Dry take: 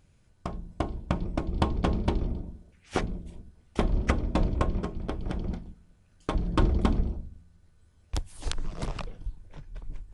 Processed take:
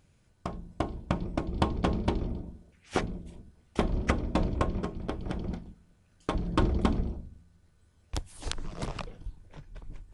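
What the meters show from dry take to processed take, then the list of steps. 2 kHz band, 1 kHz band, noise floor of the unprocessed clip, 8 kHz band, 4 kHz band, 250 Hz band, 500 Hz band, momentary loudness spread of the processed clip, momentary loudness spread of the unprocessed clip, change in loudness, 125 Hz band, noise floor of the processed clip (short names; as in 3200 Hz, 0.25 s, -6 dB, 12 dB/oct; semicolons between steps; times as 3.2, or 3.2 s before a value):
0.0 dB, 0.0 dB, -62 dBFS, 0.0 dB, 0.0 dB, -0.5 dB, 0.0 dB, 18 LU, 18 LU, -1.5 dB, -2.5 dB, -65 dBFS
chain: low shelf 61 Hz -7 dB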